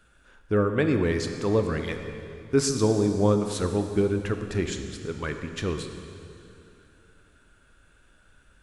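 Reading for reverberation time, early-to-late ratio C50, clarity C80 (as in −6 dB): 2.7 s, 6.5 dB, 7.5 dB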